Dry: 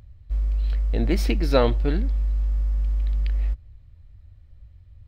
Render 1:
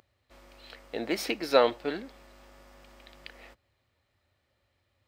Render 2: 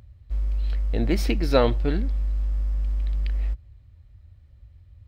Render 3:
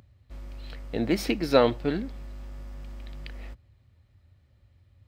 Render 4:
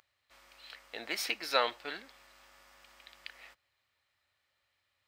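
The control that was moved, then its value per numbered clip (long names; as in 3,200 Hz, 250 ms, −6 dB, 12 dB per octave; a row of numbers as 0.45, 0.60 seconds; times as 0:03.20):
high-pass filter, corner frequency: 430, 43, 140, 1,100 Hertz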